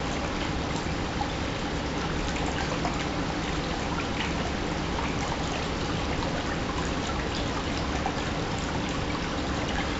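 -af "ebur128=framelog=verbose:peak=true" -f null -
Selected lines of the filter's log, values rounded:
Integrated loudness:
  I:         -29.4 LUFS
  Threshold: -39.4 LUFS
Loudness range:
  LRA:         0.3 LU
  Threshold: -49.4 LUFS
  LRA low:   -29.5 LUFS
  LRA high:  -29.2 LUFS
True peak:
  Peak:      -14.4 dBFS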